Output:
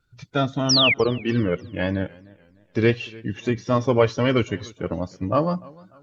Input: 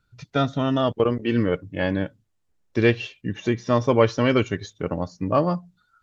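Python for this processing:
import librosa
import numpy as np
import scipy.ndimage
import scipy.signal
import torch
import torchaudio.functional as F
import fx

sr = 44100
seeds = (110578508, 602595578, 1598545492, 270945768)

y = fx.spec_quant(x, sr, step_db=15)
y = fx.vibrato(y, sr, rate_hz=3.8, depth_cents=30.0)
y = fx.spec_paint(y, sr, seeds[0], shape='fall', start_s=0.69, length_s=0.25, low_hz=2000.0, high_hz=6000.0, level_db=-18.0)
y = fx.echo_warbled(y, sr, ms=298, feedback_pct=36, rate_hz=2.8, cents=90, wet_db=-23)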